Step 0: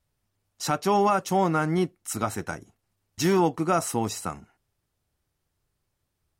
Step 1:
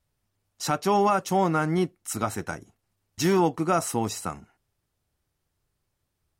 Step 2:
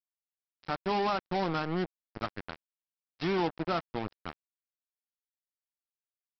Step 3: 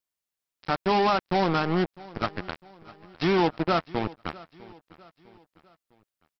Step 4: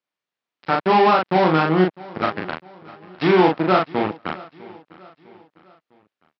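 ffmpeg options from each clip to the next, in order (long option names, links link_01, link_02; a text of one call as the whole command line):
ffmpeg -i in.wav -af anull out.wav
ffmpeg -i in.wav -af "acompressor=mode=upward:threshold=-30dB:ratio=2.5,aresample=11025,acrusher=bits=3:mix=0:aa=0.5,aresample=44100,volume=-8dB" out.wav
ffmpeg -i in.wav -af "aecho=1:1:653|1306|1959:0.0891|0.0392|0.0173,volume=7dB" out.wav
ffmpeg -i in.wav -filter_complex "[0:a]highpass=160,lowpass=3200,asplit=2[link_01][link_02];[link_02]adelay=38,volume=-2.5dB[link_03];[link_01][link_03]amix=inputs=2:normalize=0,volume=6dB" out.wav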